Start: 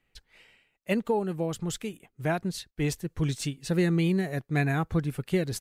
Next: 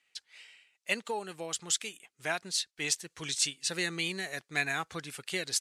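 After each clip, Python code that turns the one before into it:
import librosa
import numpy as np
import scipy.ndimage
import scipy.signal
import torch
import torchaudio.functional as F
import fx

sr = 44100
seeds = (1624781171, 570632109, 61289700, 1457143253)

y = fx.weighting(x, sr, curve='ITU-R 468')
y = y * librosa.db_to_amplitude(-3.0)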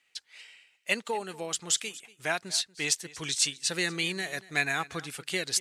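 y = x + 10.0 ** (-20.0 / 20.0) * np.pad(x, (int(237 * sr / 1000.0), 0))[:len(x)]
y = y * librosa.db_to_amplitude(3.0)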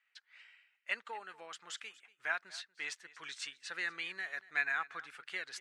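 y = fx.bandpass_q(x, sr, hz=1500.0, q=2.0)
y = y * librosa.db_to_amplitude(-2.0)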